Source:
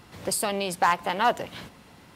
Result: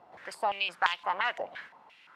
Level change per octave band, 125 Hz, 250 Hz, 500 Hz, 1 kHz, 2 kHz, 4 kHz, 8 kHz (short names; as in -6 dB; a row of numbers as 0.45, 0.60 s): under -20 dB, -20.5 dB, -9.0 dB, -6.0 dB, -1.0 dB, -2.5 dB, under -20 dB